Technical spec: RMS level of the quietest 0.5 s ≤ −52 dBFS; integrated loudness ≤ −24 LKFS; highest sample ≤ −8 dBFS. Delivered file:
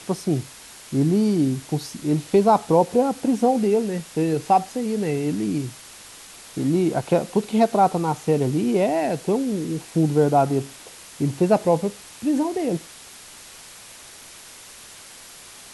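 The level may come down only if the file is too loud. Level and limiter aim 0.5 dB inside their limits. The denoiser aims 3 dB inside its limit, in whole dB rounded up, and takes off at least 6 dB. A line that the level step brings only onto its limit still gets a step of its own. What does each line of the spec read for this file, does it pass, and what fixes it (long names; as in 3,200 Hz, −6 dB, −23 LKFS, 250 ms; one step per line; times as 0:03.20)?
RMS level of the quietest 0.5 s −43 dBFS: out of spec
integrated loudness −22.0 LKFS: out of spec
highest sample −5.0 dBFS: out of spec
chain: broadband denoise 10 dB, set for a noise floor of −43 dBFS
level −2.5 dB
brickwall limiter −8.5 dBFS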